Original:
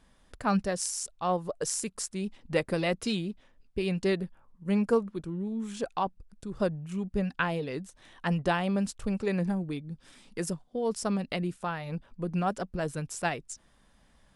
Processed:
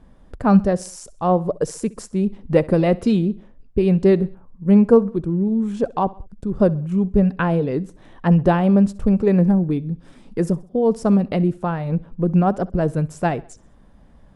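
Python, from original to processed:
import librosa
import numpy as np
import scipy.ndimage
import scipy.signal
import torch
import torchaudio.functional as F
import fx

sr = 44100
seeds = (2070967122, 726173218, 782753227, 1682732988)

y = fx.tilt_shelf(x, sr, db=9.5, hz=1300.0)
y = fx.echo_feedback(y, sr, ms=65, feedback_pct=46, wet_db=-21.5)
y = F.gain(torch.from_numpy(y), 5.0).numpy()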